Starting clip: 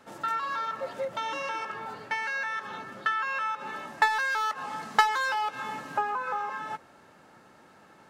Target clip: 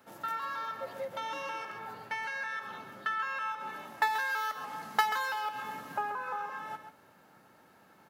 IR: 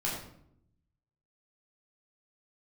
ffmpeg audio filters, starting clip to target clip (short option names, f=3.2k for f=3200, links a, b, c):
-filter_complex "[0:a]aexciter=amount=3.4:drive=7.1:freq=11k,highpass=63,aecho=1:1:135:0.335,asplit=2[a][b];[1:a]atrim=start_sample=2205[c];[b][c]afir=irnorm=-1:irlink=0,volume=-18.5dB[d];[a][d]amix=inputs=2:normalize=0,volume=-6.5dB"